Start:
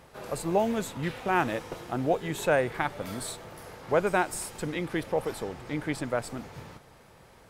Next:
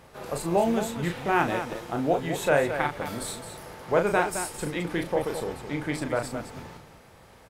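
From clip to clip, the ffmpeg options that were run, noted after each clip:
ffmpeg -i in.wav -af "aecho=1:1:34.99|215.7:0.501|0.355,volume=1dB" out.wav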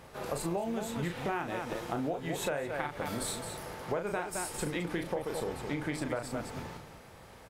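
ffmpeg -i in.wav -af "acompressor=threshold=-30dB:ratio=12" out.wav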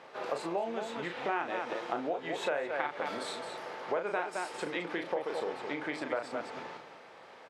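ffmpeg -i in.wav -af "highpass=390,lowpass=4000,volume=2.5dB" out.wav

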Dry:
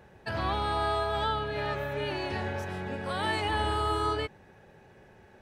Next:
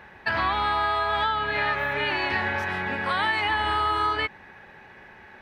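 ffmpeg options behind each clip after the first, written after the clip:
ffmpeg -i in.wav -af "equalizer=frequency=125:width_type=o:width=1:gain=-4,equalizer=frequency=250:width_type=o:width=1:gain=3,equalizer=frequency=500:width_type=o:width=1:gain=-3,equalizer=frequency=1000:width_type=o:width=1:gain=8,equalizer=frequency=2000:width_type=o:width=1:gain=12,equalizer=frequency=4000:width_type=o:width=1:gain=5,equalizer=frequency=8000:width_type=o:width=1:gain=-5,acompressor=threshold=-23dB:ratio=6,volume=2dB" out.wav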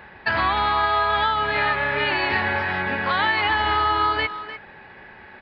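ffmpeg -i in.wav -filter_complex "[0:a]asplit=2[link_01][link_02];[link_02]adelay=300,highpass=300,lowpass=3400,asoftclip=type=hard:threshold=-21dB,volume=-11dB[link_03];[link_01][link_03]amix=inputs=2:normalize=0,aresample=11025,aresample=44100,volume=3.5dB" out.wav

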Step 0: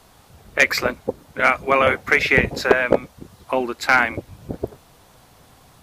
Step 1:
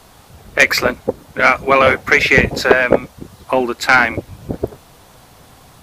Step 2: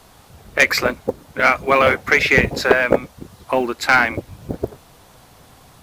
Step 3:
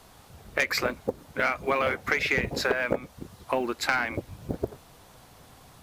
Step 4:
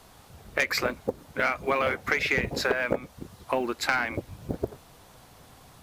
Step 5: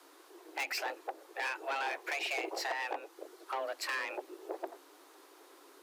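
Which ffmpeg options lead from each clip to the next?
ffmpeg -i in.wav -af "acontrast=35,volume=1dB" out.wav
ffmpeg -i in.wav -af "acrusher=bits=9:mode=log:mix=0:aa=0.000001,volume=-3dB" out.wav
ffmpeg -i in.wav -af "acompressor=threshold=-17dB:ratio=6,volume=-5dB" out.wav
ffmpeg -i in.wav -af anull out.wav
ffmpeg -i in.wav -af "asoftclip=type=tanh:threshold=-24.5dB,afreqshift=270,volume=-6dB" out.wav

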